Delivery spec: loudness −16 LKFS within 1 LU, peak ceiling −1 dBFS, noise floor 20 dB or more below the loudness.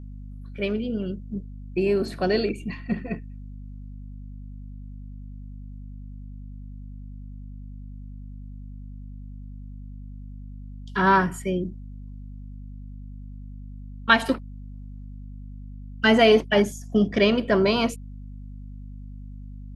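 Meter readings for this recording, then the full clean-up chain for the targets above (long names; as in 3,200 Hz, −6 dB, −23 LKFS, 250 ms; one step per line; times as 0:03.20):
mains hum 50 Hz; hum harmonics up to 250 Hz; level of the hum −36 dBFS; integrated loudness −23.0 LKFS; sample peak −3.5 dBFS; target loudness −16.0 LKFS
→ mains-hum notches 50/100/150/200/250 Hz
level +7 dB
brickwall limiter −1 dBFS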